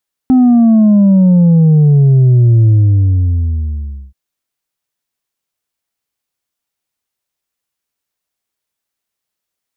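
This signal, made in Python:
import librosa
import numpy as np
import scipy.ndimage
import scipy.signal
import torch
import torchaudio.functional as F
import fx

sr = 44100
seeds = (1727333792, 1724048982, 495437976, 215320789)

y = fx.sub_drop(sr, level_db=-5, start_hz=260.0, length_s=3.83, drive_db=3, fade_s=1.45, end_hz=65.0)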